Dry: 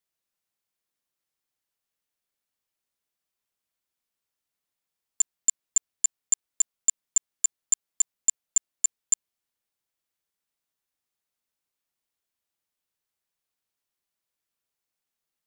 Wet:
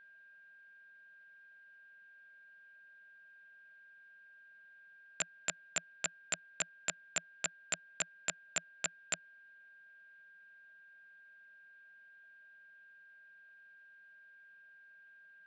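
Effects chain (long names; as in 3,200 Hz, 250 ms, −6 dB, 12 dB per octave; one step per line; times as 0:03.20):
loudspeaker in its box 150–3,700 Hz, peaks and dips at 170 Hz +9 dB, 350 Hz −8 dB, 630 Hz +10 dB, 960 Hz −8 dB, 1,500 Hz +9 dB, 2,500 Hz +6 dB
steady tone 1,600 Hz −66 dBFS
level +9 dB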